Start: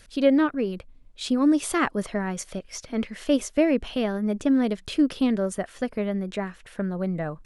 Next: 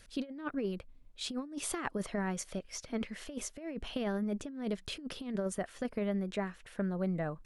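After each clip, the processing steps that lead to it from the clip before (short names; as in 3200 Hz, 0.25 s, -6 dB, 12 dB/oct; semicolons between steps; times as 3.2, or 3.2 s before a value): negative-ratio compressor -25 dBFS, ratio -0.5; gain -9 dB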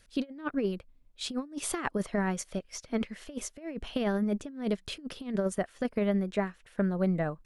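upward expander 1.5:1, over -52 dBFS; gain +6.5 dB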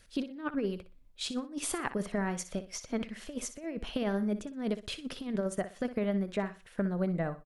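compressor 1.5:1, threshold -37 dBFS, peak gain reduction 5.5 dB; feedback echo 61 ms, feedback 26%, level -13 dB; gain +1.5 dB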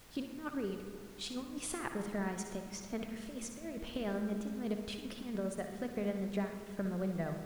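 added noise pink -52 dBFS; on a send at -6 dB: reverb RT60 2.1 s, pre-delay 55 ms; on the sum: gain -6 dB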